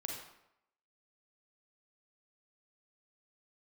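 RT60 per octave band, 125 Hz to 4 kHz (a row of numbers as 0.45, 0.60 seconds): 0.70, 0.75, 0.80, 0.80, 0.70, 0.60 seconds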